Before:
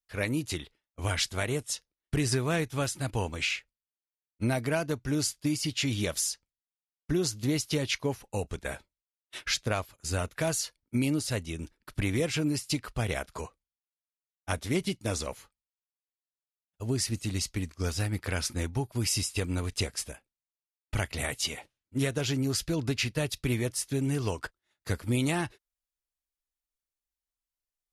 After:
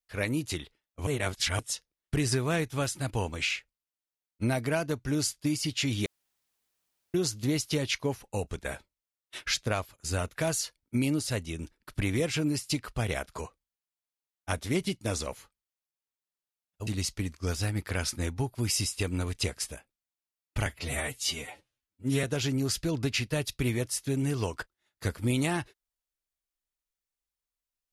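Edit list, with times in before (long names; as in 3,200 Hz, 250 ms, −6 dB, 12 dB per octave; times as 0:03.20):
0:01.07–0:01.59: reverse
0:06.06–0:07.14: fill with room tone
0:16.87–0:17.24: remove
0:21.03–0:22.08: time-stretch 1.5×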